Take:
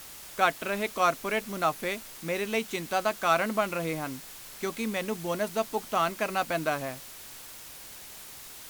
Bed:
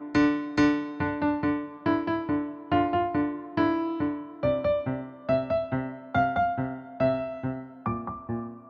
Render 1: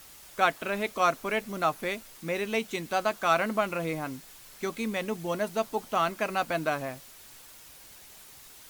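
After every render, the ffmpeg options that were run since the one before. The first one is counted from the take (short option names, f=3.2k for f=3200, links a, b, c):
-af "afftdn=nr=6:nf=-46"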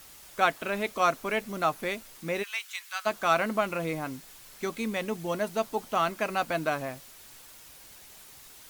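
-filter_complex "[0:a]asplit=3[a][b][c];[a]afade=t=out:st=2.42:d=0.02[d];[b]highpass=f=1.2k:w=0.5412,highpass=f=1.2k:w=1.3066,afade=t=in:st=2.42:d=0.02,afade=t=out:st=3.05:d=0.02[e];[c]afade=t=in:st=3.05:d=0.02[f];[d][e][f]amix=inputs=3:normalize=0"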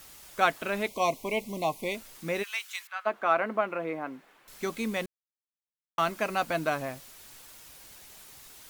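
-filter_complex "[0:a]asettb=1/sr,asplit=3[a][b][c];[a]atrim=end=0.884[d];[b]atrim=start=0.88:end=1.95,asetpts=PTS-STARTPTS,afade=t=in:d=0.004:c=qsin,afade=t=out:st=1.066:d=0.004:c=qsin,asuperstop=centerf=1500:order=12:qfactor=1.6[e];[c]atrim=start=1.946[f];[d][e]acrossfade=d=0.004:c1=hsin:c2=qsin[g];[g][f]acrossfade=d=0.004:c1=qsin:c2=hsin,asettb=1/sr,asplit=3[h][i][j];[h]atrim=end=2.874[k];[i]atrim=start=2.87:end=4.48,asetpts=PTS-STARTPTS,afade=t=in:d=0.004:c=qsin,afade=t=out:st=1.606:d=0.004:c=qsin,acrossover=split=220 2500:gain=0.0891 1 0.0794[l][m][n];[l][m][n]amix=inputs=3:normalize=0[o];[j]atrim=start=4.476[p];[k][o]acrossfade=d=0.004:c1=hsin:c2=qsin[q];[q][p]acrossfade=d=0.004:c1=qsin:c2=hsin,asplit=3[r][s][t];[r]atrim=end=5.06,asetpts=PTS-STARTPTS,afade=t=out:st=5.056:d=0.004:c=hsin[u];[s]atrim=start=5.06:end=5.98,asetpts=PTS-STARTPTS,volume=0[v];[t]atrim=start=5.98,asetpts=PTS-STARTPTS,afade=t=in:d=0.004:c=hsin[w];[u][v][w]concat=n=3:v=0:a=1"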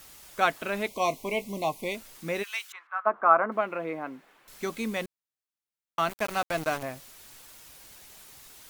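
-filter_complex "[0:a]asettb=1/sr,asplit=3[a][b][c];[a]atrim=end=1.034[d];[b]atrim=start=1.03:end=1.69,asetpts=PTS-STARTPTS,afade=t=in:d=0.004:c=qsin,afade=t=out:st=0.656:d=0.004:c=qsin,asplit=2[e][f];[f]adelay=20,volume=-12dB[g];[e][g]amix=inputs=2:normalize=0,atrim=end_sample=29106[h];[c]atrim=start=1.686[i];[d][h]acrossfade=d=0.004:c1=hsin:c2=qsin[j];[j][i]acrossfade=d=0.004:c1=qsin:c2=hsin,asettb=1/sr,asplit=3[k][l][m];[k]atrim=end=2.724[n];[l]atrim=start=2.72:end=3.52,asetpts=PTS-STARTPTS,afade=t=in:d=0.004:c=qsin,afade=t=out:st=0.796:d=0.004:c=qsin,lowpass=f=1.2k:t=q:w=2.5[o];[m]atrim=start=3.516[p];[n][o]acrossfade=d=0.004:c1=hsin:c2=qsin[q];[q][p]acrossfade=d=0.004:c1=qsin:c2=hsin,asettb=1/sr,asplit=3[r][s][t];[r]atrim=end=6.094[u];[s]atrim=start=6.09:end=6.83,asetpts=PTS-STARTPTS,afade=t=in:d=0.004:c=qsin,afade=t=out:st=0.736:d=0.004:c=qsin,aeval=exprs='val(0)*gte(abs(val(0)),0.0224)':c=same[v];[t]atrim=start=6.826[w];[u][v]acrossfade=d=0.004:c1=hsin:c2=qsin[x];[x][w]acrossfade=d=0.004:c1=qsin:c2=hsin"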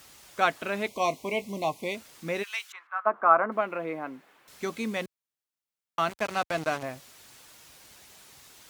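-filter_complex "[0:a]acrossover=split=8700[a][b];[b]acompressor=threshold=-55dB:ratio=4:attack=1:release=60[c];[a][c]amix=inputs=2:normalize=0,highpass=60"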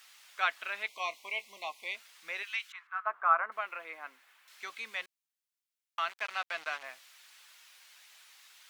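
-filter_complex "[0:a]highpass=1.5k,acrossover=split=4200[a][b];[b]acompressor=threshold=-60dB:ratio=4:attack=1:release=60[c];[a][c]amix=inputs=2:normalize=0"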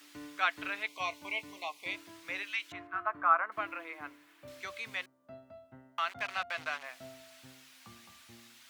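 -filter_complex "[1:a]volume=-26dB[a];[0:a][a]amix=inputs=2:normalize=0"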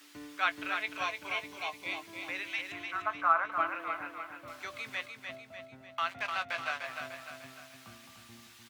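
-filter_complex "[0:a]asplit=2[a][b];[b]adelay=18,volume=-12dB[c];[a][c]amix=inputs=2:normalize=0,aecho=1:1:299|598|897|1196|1495|1794:0.501|0.246|0.12|0.059|0.0289|0.0142"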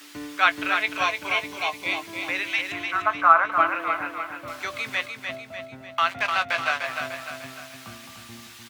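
-af "volume=10.5dB"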